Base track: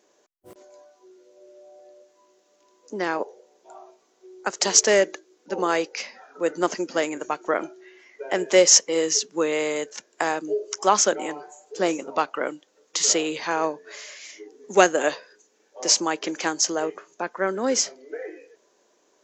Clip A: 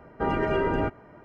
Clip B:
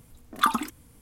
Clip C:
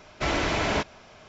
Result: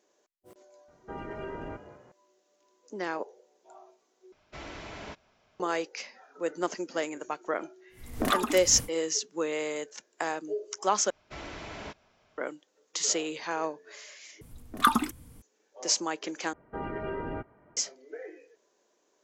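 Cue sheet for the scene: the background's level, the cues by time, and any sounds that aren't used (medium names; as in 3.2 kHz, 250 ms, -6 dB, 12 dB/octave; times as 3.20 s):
base track -7.5 dB
0.88 s: add A -14 dB + frequency-shifting echo 195 ms, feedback 45%, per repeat +45 Hz, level -13.5 dB
4.32 s: replace with C -17 dB
7.89 s: add B -7 dB, fades 0.10 s + recorder AGC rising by 79 dB/s, up to +26 dB
11.10 s: replace with C -16 dB
14.41 s: replace with B -0.5 dB + bass shelf 300 Hz +5 dB
16.53 s: replace with A -10 dB + low-pass 2.8 kHz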